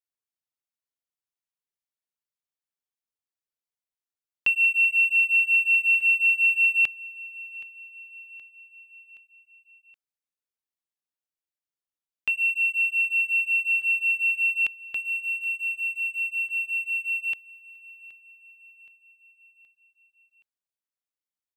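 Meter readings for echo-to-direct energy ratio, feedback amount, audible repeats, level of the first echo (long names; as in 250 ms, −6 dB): −18.5 dB, 56%, 3, −20.0 dB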